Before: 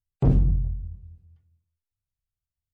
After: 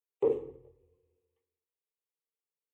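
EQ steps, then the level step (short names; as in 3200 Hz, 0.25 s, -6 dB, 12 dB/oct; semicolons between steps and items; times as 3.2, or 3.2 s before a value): resonant high-pass 450 Hz, resonance Q 5.6; fixed phaser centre 990 Hz, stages 8; -4.5 dB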